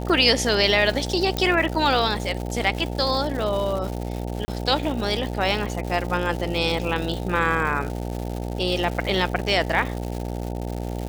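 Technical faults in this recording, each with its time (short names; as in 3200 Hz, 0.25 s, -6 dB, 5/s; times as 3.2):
buzz 60 Hz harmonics 15 -29 dBFS
crackle 270/s -29 dBFS
1.37 pop -10 dBFS
4.45–4.48 gap 30 ms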